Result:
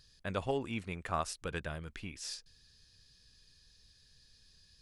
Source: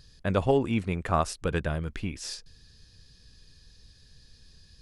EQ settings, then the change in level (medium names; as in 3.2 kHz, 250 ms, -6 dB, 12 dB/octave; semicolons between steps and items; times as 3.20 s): tilt shelf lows -4 dB, about 920 Hz; -8.5 dB